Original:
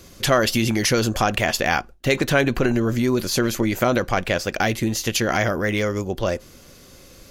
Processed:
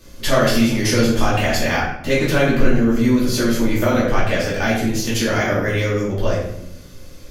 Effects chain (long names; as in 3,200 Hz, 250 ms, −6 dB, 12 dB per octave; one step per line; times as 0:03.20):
low-shelf EQ 120 Hz +5.5 dB
rectangular room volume 190 cubic metres, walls mixed, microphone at 2.6 metres
level −7.5 dB